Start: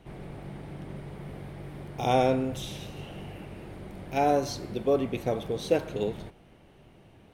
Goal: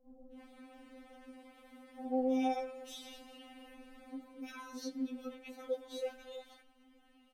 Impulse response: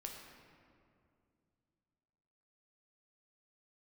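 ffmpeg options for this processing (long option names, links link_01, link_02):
-filter_complex "[0:a]acrossover=split=650[link_01][link_02];[link_02]adelay=320[link_03];[link_01][link_03]amix=inputs=2:normalize=0,acompressor=threshold=-38dB:ratio=1.5,afftfilt=real='re*3.46*eq(mod(b,12),0)':imag='im*3.46*eq(mod(b,12),0)':win_size=2048:overlap=0.75,volume=-5.5dB"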